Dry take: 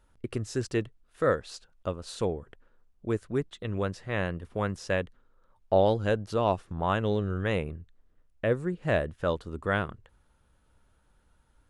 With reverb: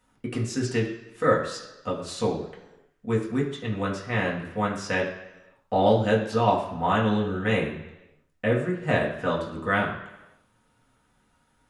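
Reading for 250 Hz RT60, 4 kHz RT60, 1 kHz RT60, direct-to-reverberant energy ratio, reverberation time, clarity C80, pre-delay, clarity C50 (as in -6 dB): 0.95 s, 0.95 s, 1.0 s, -4.0 dB, 1.0 s, 9.0 dB, 3 ms, 7.0 dB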